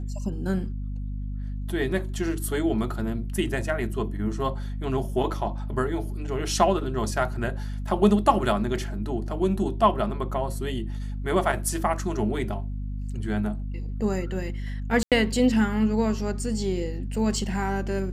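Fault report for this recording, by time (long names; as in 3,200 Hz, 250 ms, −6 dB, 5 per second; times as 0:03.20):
mains hum 50 Hz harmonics 5 −31 dBFS
0:15.03–0:15.12: drop-out 87 ms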